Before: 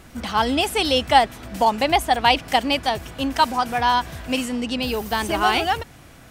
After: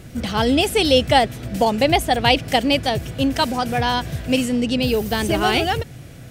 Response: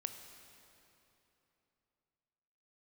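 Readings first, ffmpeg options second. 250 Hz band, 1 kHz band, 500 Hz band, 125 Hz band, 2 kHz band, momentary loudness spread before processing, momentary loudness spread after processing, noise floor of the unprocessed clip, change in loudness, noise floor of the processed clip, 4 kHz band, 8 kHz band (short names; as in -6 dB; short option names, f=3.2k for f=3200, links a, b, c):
+5.5 dB, -2.0 dB, +4.5 dB, +9.5 dB, +0.5 dB, 8 LU, 7 LU, -46 dBFS, +1.5 dB, -39 dBFS, +2.0 dB, +2.5 dB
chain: -af "equalizer=f=125:t=o:w=1:g=11,equalizer=f=500:t=o:w=1:g=5,equalizer=f=1k:t=o:w=1:g=-9,volume=2.5dB"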